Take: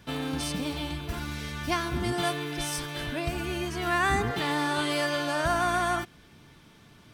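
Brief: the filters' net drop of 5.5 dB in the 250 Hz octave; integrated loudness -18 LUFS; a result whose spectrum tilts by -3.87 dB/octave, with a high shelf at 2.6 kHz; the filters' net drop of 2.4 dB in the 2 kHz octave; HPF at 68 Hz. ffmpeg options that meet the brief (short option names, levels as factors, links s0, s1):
-af "highpass=68,equalizer=f=250:t=o:g=-8,equalizer=f=2000:t=o:g=-5,highshelf=f=2600:g=5,volume=3.98"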